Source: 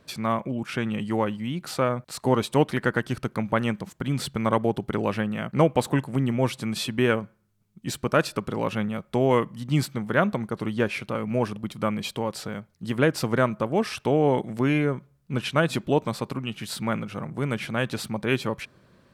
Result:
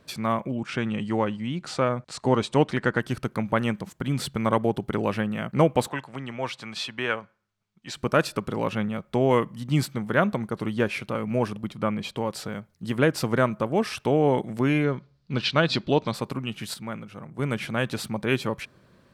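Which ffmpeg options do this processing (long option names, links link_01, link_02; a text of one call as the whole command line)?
ffmpeg -i in.wav -filter_complex "[0:a]asplit=3[link_01][link_02][link_03];[link_01]afade=type=out:start_time=0.56:duration=0.02[link_04];[link_02]lowpass=frequency=8200:width=0.5412,lowpass=frequency=8200:width=1.3066,afade=type=in:start_time=0.56:duration=0.02,afade=type=out:start_time=2.98:duration=0.02[link_05];[link_03]afade=type=in:start_time=2.98:duration=0.02[link_06];[link_04][link_05][link_06]amix=inputs=3:normalize=0,asettb=1/sr,asplit=3[link_07][link_08][link_09];[link_07]atrim=end=5.884[link_10];[link_08]atrim=start=5.88:end=7.97,asetpts=PTS-STARTPTS,afade=type=in:duration=0.004:curve=qsin,afade=type=out:start_time=2.086:duration=0.004:curve=qsin,acrossover=split=600 6600:gain=0.224 1 0.126[link_11][link_12][link_13];[link_11][link_12][link_13]amix=inputs=3:normalize=0[link_14];[link_09]atrim=start=7.966[link_15];[link_10][link_14]acrossfade=duration=0.004:curve1=hsin:curve2=qsin[link_16];[link_16][link_15]acrossfade=duration=0.004:curve1=qsin:curve2=hsin,asettb=1/sr,asplit=3[link_17][link_18][link_19];[link_17]atrim=end=8.694[link_20];[link_18]atrim=start=8.69:end=9.28,asetpts=PTS-STARTPTS,afade=type=in:duration=0.004:curve=qsin,afade=type=out:start_time=0.586:duration=0.004:curve=qsin,equalizer=frequency=12000:width=0.79:gain=-5[link_21];[link_19]atrim=start=9.276[link_22];[link_20][link_21]acrossfade=duration=0.004:curve1=hsin:curve2=qsin[link_23];[link_23][link_22]acrossfade=duration=0.004:curve1=qsin:curve2=hsin,asettb=1/sr,asplit=3[link_24][link_25][link_26];[link_24]atrim=end=11.704[link_27];[link_25]atrim=start=11.7:end=12.17,asetpts=PTS-STARTPTS,afade=type=in:duration=0.004:curve=qsin,afade=type=out:start_time=0.466:duration=0.004:curve=qsin,lowpass=frequency=3500:poles=1[link_28];[link_26]atrim=start=12.166[link_29];[link_27][link_28]acrossfade=duration=0.004:curve1=hsin:curve2=qsin[link_30];[link_30][link_29]acrossfade=duration=0.004:curve1=qsin:curve2=hsin,asettb=1/sr,asplit=3[link_31][link_32][link_33];[link_31]atrim=end=14.844[link_34];[link_32]atrim=start=14.84:end=16.14,asetpts=PTS-STARTPTS,afade=type=in:duration=0.004:curve=qsin,afade=type=out:start_time=1.296:duration=0.004:curve=qsin,lowpass=frequency=4500:width_type=q:width=3.7[link_35];[link_33]atrim=start=16.136[link_36];[link_34][link_35]acrossfade=duration=0.004:curve1=hsin:curve2=qsin[link_37];[link_37][link_36]acrossfade=duration=0.004:curve1=qsin:curve2=hsin,asplit=3[link_38][link_39][link_40];[link_38]atrim=end=16.742[link_41];[link_39]atrim=start=16.738:end=17.392,asetpts=PTS-STARTPTS,volume=-7.5dB[link_42];[link_40]atrim=start=17.388[link_43];[link_41][link_42]acrossfade=duration=0.004:curve1=hsin:curve2=hsin[link_44];[link_44][link_43]acrossfade=duration=0.004:curve1=hsin:curve2=hsin" out.wav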